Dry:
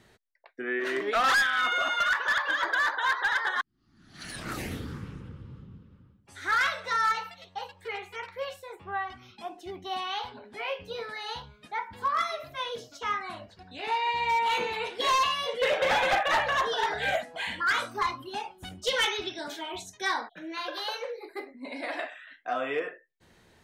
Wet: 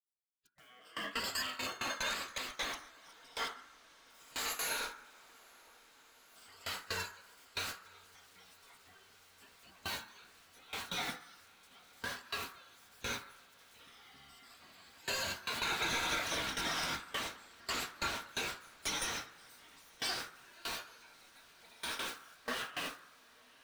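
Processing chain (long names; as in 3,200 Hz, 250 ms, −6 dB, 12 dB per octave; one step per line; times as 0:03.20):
rippled gain that drifts along the octave scale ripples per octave 1.4, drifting −0.37 Hz, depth 23 dB
centre clipping without the shift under −46 dBFS
downward compressor 5 to 1, threshold −33 dBFS, peak gain reduction 18.5 dB
gate on every frequency bin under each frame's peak −20 dB weak
feedback delay with all-pass diffusion 921 ms, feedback 77%, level −7.5 dB
power curve on the samples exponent 0.7
noise gate with hold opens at −34 dBFS
on a send at −10 dB: low-pass with resonance 1,400 Hz, resonance Q 3.8 + convolution reverb RT60 1.0 s, pre-delay 3 ms
on the sum: level +6 dB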